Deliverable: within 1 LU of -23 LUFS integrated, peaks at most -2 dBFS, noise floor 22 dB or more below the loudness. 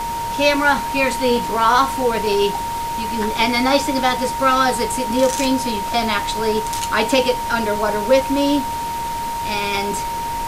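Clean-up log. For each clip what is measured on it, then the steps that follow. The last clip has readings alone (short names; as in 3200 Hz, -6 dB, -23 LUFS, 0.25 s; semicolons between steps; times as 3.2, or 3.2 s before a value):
steady tone 930 Hz; tone level -22 dBFS; noise floor -24 dBFS; noise floor target -41 dBFS; loudness -18.5 LUFS; peak -1.5 dBFS; loudness target -23.0 LUFS
-> notch 930 Hz, Q 30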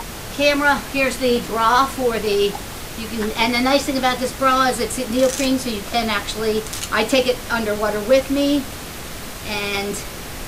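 steady tone none; noise floor -32 dBFS; noise floor target -41 dBFS
-> noise print and reduce 9 dB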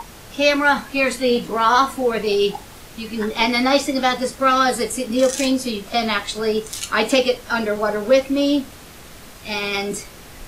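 noise floor -41 dBFS; noise floor target -42 dBFS
-> noise print and reduce 6 dB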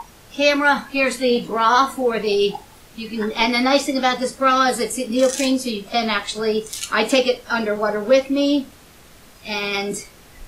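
noise floor -47 dBFS; loudness -19.5 LUFS; peak -2.0 dBFS; loudness target -23.0 LUFS
-> gain -3.5 dB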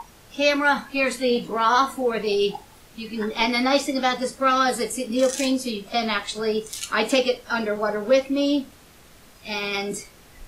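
loudness -23.0 LUFS; peak -5.5 dBFS; noise floor -50 dBFS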